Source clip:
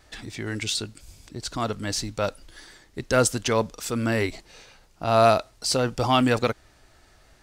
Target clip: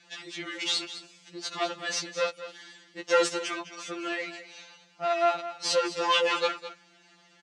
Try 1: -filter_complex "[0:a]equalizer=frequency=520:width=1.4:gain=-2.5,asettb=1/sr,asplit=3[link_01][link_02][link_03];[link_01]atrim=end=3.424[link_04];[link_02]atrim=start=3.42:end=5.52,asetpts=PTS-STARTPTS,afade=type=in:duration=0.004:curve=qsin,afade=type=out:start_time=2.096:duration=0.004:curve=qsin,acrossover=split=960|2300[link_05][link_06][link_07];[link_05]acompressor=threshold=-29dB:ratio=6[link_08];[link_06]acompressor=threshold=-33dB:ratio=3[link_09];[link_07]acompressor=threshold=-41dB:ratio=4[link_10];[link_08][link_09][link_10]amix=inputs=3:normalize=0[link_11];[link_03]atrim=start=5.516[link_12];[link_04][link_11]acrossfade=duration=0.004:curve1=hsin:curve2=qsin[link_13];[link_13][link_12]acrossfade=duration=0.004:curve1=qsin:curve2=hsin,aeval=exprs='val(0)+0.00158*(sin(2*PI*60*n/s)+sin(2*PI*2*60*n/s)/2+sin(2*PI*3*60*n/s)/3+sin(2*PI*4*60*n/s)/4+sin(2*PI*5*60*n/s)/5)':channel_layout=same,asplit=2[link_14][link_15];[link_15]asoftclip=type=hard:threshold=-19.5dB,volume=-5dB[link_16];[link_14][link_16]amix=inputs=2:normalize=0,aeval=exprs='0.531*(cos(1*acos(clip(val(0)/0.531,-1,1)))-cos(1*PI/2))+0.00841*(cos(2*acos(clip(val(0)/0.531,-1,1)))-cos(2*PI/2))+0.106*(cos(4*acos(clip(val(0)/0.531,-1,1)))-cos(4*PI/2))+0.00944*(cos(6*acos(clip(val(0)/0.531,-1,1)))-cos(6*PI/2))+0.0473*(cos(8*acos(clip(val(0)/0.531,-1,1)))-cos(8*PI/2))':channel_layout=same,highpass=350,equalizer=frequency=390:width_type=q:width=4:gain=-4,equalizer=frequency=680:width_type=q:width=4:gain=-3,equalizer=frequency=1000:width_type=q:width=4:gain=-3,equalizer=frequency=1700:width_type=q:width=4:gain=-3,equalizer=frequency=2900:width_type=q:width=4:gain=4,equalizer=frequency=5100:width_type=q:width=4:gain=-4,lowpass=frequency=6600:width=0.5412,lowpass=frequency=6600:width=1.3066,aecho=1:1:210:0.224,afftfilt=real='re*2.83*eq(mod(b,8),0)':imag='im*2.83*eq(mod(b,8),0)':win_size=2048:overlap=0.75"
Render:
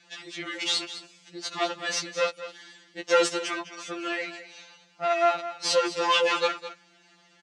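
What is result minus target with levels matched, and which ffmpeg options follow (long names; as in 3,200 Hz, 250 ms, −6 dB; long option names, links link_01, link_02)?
hard clipping: distortion −8 dB
-filter_complex "[0:a]equalizer=frequency=520:width=1.4:gain=-2.5,asettb=1/sr,asplit=3[link_01][link_02][link_03];[link_01]atrim=end=3.424[link_04];[link_02]atrim=start=3.42:end=5.52,asetpts=PTS-STARTPTS,afade=type=in:duration=0.004:curve=qsin,afade=type=out:start_time=2.096:duration=0.004:curve=qsin,acrossover=split=960|2300[link_05][link_06][link_07];[link_05]acompressor=threshold=-29dB:ratio=6[link_08];[link_06]acompressor=threshold=-33dB:ratio=3[link_09];[link_07]acompressor=threshold=-41dB:ratio=4[link_10];[link_08][link_09][link_10]amix=inputs=3:normalize=0[link_11];[link_03]atrim=start=5.516[link_12];[link_04][link_11]acrossfade=duration=0.004:curve1=hsin:curve2=qsin[link_13];[link_13][link_12]acrossfade=duration=0.004:curve1=qsin:curve2=hsin,aeval=exprs='val(0)+0.00158*(sin(2*PI*60*n/s)+sin(2*PI*2*60*n/s)/2+sin(2*PI*3*60*n/s)/3+sin(2*PI*4*60*n/s)/4+sin(2*PI*5*60*n/s)/5)':channel_layout=same,asplit=2[link_14][link_15];[link_15]asoftclip=type=hard:threshold=-30.5dB,volume=-5dB[link_16];[link_14][link_16]amix=inputs=2:normalize=0,aeval=exprs='0.531*(cos(1*acos(clip(val(0)/0.531,-1,1)))-cos(1*PI/2))+0.00841*(cos(2*acos(clip(val(0)/0.531,-1,1)))-cos(2*PI/2))+0.106*(cos(4*acos(clip(val(0)/0.531,-1,1)))-cos(4*PI/2))+0.00944*(cos(6*acos(clip(val(0)/0.531,-1,1)))-cos(6*PI/2))+0.0473*(cos(8*acos(clip(val(0)/0.531,-1,1)))-cos(8*PI/2))':channel_layout=same,highpass=350,equalizer=frequency=390:width_type=q:width=4:gain=-4,equalizer=frequency=680:width_type=q:width=4:gain=-3,equalizer=frequency=1000:width_type=q:width=4:gain=-3,equalizer=frequency=1700:width_type=q:width=4:gain=-3,equalizer=frequency=2900:width_type=q:width=4:gain=4,equalizer=frequency=5100:width_type=q:width=4:gain=-4,lowpass=frequency=6600:width=0.5412,lowpass=frequency=6600:width=1.3066,aecho=1:1:210:0.224,afftfilt=real='re*2.83*eq(mod(b,8),0)':imag='im*2.83*eq(mod(b,8),0)':win_size=2048:overlap=0.75"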